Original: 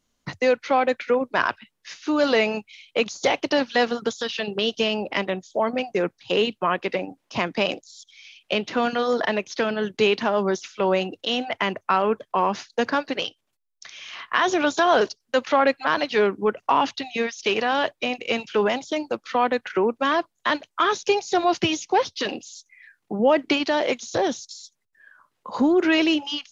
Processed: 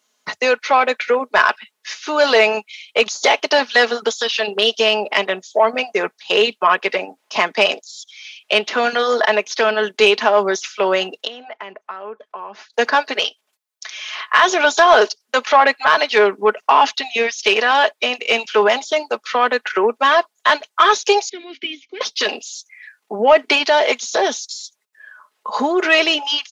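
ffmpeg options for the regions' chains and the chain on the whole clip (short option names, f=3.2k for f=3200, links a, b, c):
-filter_complex "[0:a]asettb=1/sr,asplit=3[a][b][c];[a]atrim=end=11.274[d];[b]atrim=start=11.27:end=12.74,asetpts=PTS-STARTPTS,afade=t=in:d=0.004:c=qsin,afade=t=out:st=1.466:d=0.004:c=qsin,lowpass=f=1.5k:p=1,acompressor=threshold=-43dB:ratio=2.5:attack=3.2:release=140:knee=1:detection=peak[e];[c]atrim=start=12.736[f];[d][e]acrossfade=d=0.004:c1=hsin:c2=qsin[g];[g][f]acrossfade=d=0.004:c1=qsin:c2=hsin,asettb=1/sr,asplit=3[h][i][j];[h]atrim=end=21.294[k];[i]atrim=start=21.29:end=22.01,asetpts=PTS-STARTPTS,afade=t=in:d=0.004:c=qsin,afade=t=out:st=0.716:d=0.004:c=qsin,acrossover=split=4900[l][m];[m]acompressor=threshold=-46dB:ratio=4:attack=1:release=60[n];[l][n]amix=inputs=2:normalize=0,asplit=3[o][p][q];[o]bandpass=f=270:t=q:w=8,volume=0dB[r];[p]bandpass=f=2.29k:t=q:w=8,volume=-6dB[s];[q]bandpass=f=3.01k:t=q:w=8,volume=-9dB[t];[r][s][t]amix=inputs=3:normalize=0,lowshelf=f=220:t=q:w=3:g=-6.5[u];[j]atrim=start=22.006[v];[k][u]acrossfade=d=0.004:c1=hsin:c2=qsin[w];[w][v]acrossfade=d=0.004:c1=qsin:c2=hsin,highpass=530,aecho=1:1:4.7:0.5,acontrast=72,volume=2dB"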